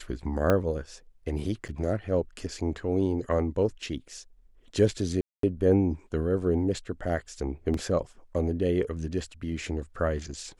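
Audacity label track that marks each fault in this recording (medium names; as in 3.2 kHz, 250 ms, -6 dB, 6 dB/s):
0.500000	0.500000	pop -11 dBFS
1.680000	1.690000	dropout 7.5 ms
5.210000	5.430000	dropout 223 ms
7.740000	7.740000	dropout 2.6 ms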